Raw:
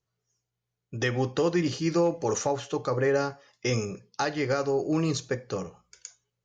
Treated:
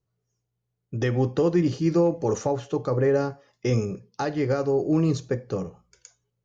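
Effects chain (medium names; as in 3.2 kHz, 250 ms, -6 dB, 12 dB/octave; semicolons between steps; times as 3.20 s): tilt shelf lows +6 dB, about 800 Hz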